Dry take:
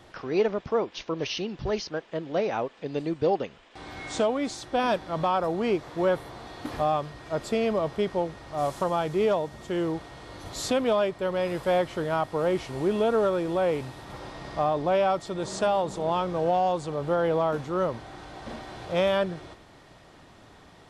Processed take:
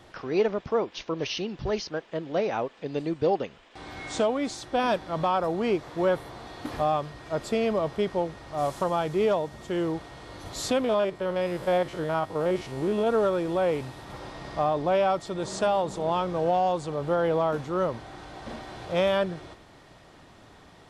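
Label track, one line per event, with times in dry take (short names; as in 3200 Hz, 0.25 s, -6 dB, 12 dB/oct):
10.840000	13.070000	stepped spectrum every 50 ms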